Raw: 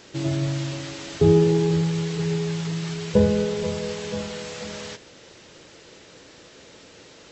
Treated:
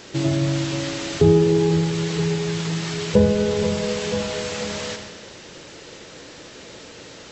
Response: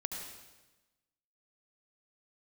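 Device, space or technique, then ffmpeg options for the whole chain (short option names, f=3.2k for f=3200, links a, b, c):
ducked reverb: -filter_complex "[0:a]asplit=3[a][b][c];[1:a]atrim=start_sample=2205[d];[b][d]afir=irnorm=-1:irlink=0[e];[c]apad=whole_len=322483[f];[e][f]sidechaincompress=threshold=-24dB:ratio=8:attack=16:release=390,volume=1.5dB[g];[a][g]amix=inputs=2:normalize=0"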